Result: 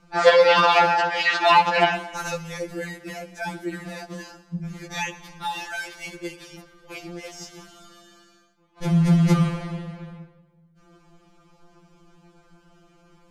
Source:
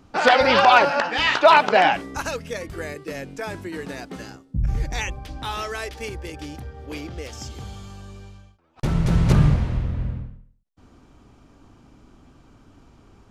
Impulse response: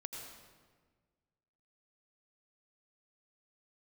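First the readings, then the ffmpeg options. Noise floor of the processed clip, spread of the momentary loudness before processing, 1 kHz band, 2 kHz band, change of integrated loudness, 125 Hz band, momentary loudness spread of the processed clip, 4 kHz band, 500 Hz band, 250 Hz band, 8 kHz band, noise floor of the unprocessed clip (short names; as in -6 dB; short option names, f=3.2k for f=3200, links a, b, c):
-59 dBFS, 21 LU, -2.0 dB, -2.0 dB, -0.5 dB, -2.0 dB, 21 LU, -1.0 dB, 0.0 dB, +2.0 dB, -0.5 dB, -55 dBFS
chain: -filter_complex "[0:a]asplit=2[a][b];[b]highpass=f=150:p=1[c];[1:a]atrim=start_sample=2205,asetrate=40131,aresample=44100[d];[c][d]afir=irnorm=-1:irlink=0,volume=-9dB[e];[a][e]amix=inputs=2:normalize=0,afftfilt=real='re*2.83*eq(mod(b,8),0)':imag='im*2.83*eq(mod(b,8),0)':win_size=2048:overlap=0.75"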